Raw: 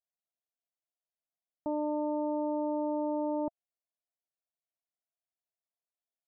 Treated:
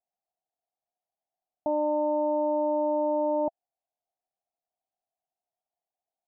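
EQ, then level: resonant low-pass 760 Hz, resonance Q 7; 0.0 dB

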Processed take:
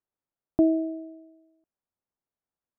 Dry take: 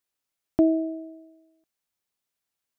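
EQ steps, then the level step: low-pass 1.2 kHz 12 dB/octave; distance through air 390 m; 0.0 dB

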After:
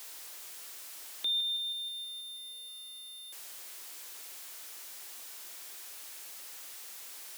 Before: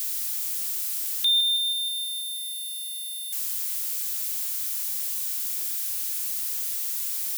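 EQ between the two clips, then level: high-pass 280 Hz 24 dB/octave; dynamic bell 920 Hz, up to -4 dB, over -47 dBFS, Q 0.84; tilt EQ -4.5 dB/octave; -1.0 dB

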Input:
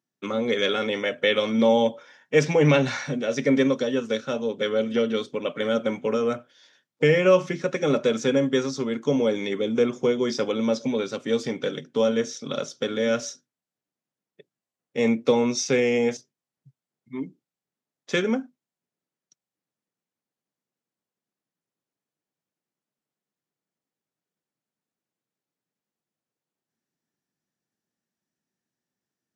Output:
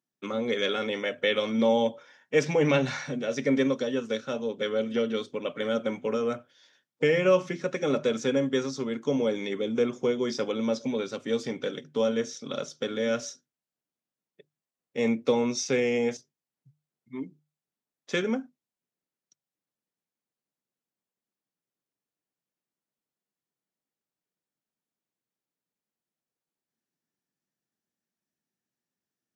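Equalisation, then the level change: hum notches 50/100/150 Hz; -4.0 dB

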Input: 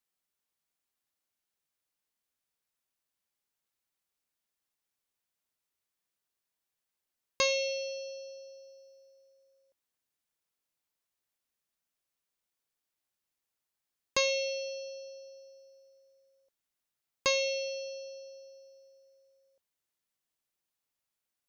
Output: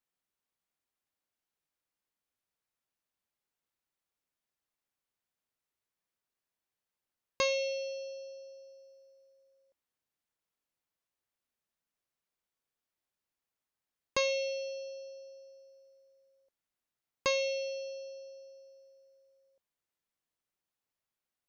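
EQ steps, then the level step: treble shelf 3.1 kHz -7 dB; 0.0 dB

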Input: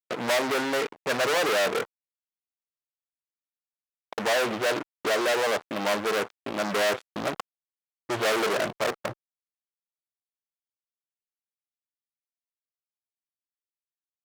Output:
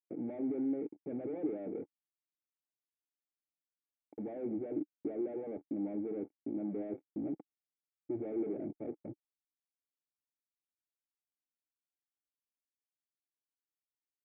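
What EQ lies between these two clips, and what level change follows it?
cascade formant filter u; static phaser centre 2.3 kHz, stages 4; +3.5 dB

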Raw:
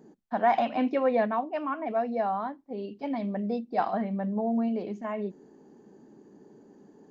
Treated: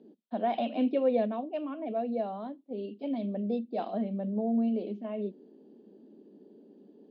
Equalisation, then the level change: elliptic band-pass 210–3800 Hz, stop band 40 dB; high-order bell 1.3 kHz -14 dB; 0.0 dB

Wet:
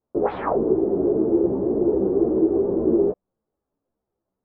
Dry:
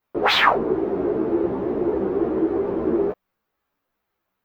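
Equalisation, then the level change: Chebyshev low-pass 500 Hz, order 2; +2.5 dB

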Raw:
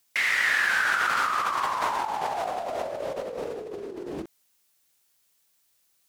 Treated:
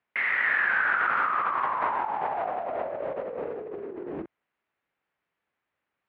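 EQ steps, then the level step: high-pass 50 Hz; low-pass 2.2 kHz 24 dB/octave; bass shelf 110 Hz -5 dB; 0.0 dB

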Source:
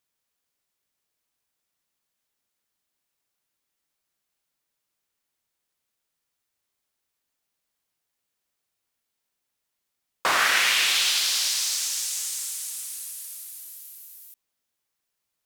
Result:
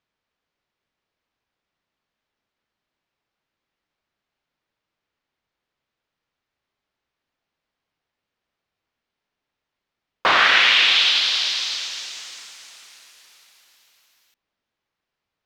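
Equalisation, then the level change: dynamic bell 3.5 kHz, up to +7 dB, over -37 dBFS, Q 1.5; distance through air 220 m; +6.5 dB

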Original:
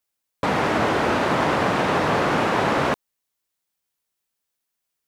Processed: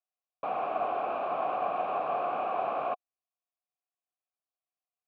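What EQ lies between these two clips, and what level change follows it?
vowel filter a; distance through air 280 m; 0.0 dB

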